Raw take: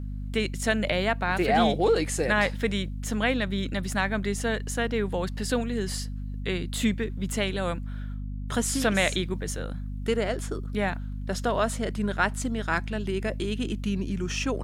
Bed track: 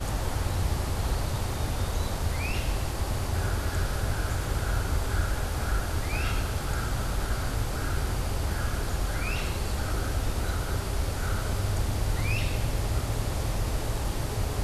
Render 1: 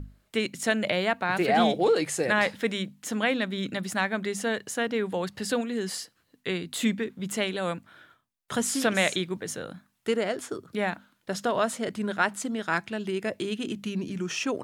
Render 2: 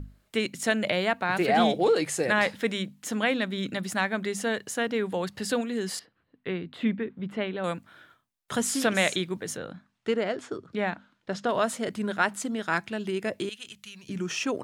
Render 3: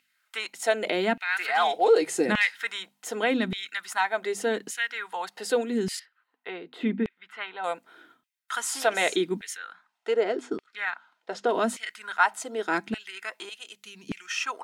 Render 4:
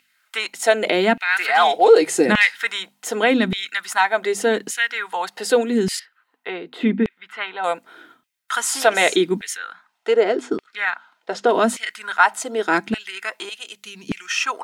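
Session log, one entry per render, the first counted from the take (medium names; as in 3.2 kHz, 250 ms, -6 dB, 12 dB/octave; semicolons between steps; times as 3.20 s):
hum notches 50/100/150/200/250 Hz
5.99–7.64 s: distance through air 410 m; 9.57–11.49 s: distance through air 95 m; 13.49–14.09 s: amplifier tone stack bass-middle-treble 10-0-10
comb of notches 570 Hz; LFO high-pass saw down 0.85 Hz 210–2500 Hz
trim +8 dB; peak limiter -2 dBFS, peak gain reduction 2 dB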